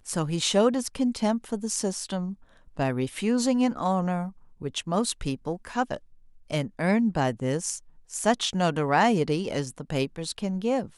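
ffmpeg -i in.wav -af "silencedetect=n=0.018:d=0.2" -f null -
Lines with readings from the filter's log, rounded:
silence_start: 2.33
silence_end: 2.77 | silence_duration: 0.44
silence_start: 4.29
silence_end: 4.62 | silence_duration: 0.32
silence_start: 5.97
silence_end: 6.51 | silence_duration: 0.54
silence_start: 7.78
silence_end: 8.11 | silence_duration: 0.33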